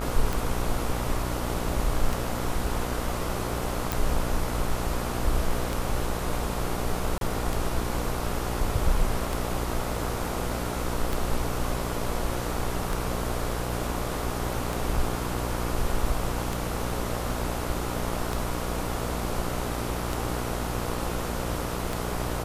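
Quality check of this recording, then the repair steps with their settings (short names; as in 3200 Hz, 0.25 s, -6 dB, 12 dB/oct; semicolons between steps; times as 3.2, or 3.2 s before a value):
buzz 60 Hz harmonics 24 -32 dBFS
tick 33 1/3 rpm
3.92 pop
7.18–7.21 gap 32 ms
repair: de-click; de-hum 60 Hz, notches 24; interpolate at 7.18, 32 ms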